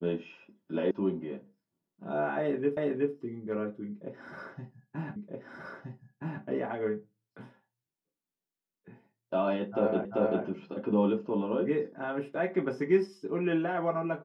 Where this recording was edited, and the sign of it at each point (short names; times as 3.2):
0.91 sound cut off
2.77 repeat of the last 0.37 s
5.16 repeat of the last 1.27 s
10.05 repeat of the last 0.39 s